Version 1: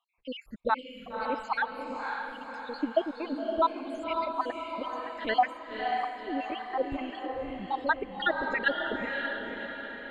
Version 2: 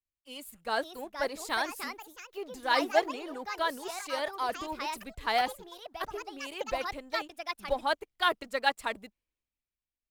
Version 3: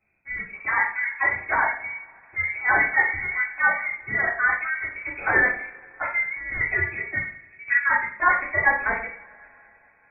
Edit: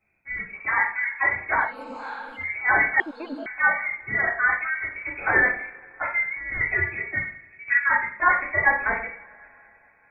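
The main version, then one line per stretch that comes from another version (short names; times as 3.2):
3
1.67–2.43 from 1, crossfade 0.16 s
3–3.46 from 1
not used: 2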